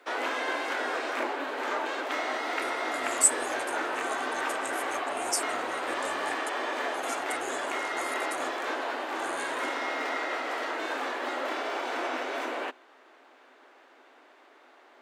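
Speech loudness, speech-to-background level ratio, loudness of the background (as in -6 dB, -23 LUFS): -32.0 LUFS, -0.5 dB, -31.5 LUFS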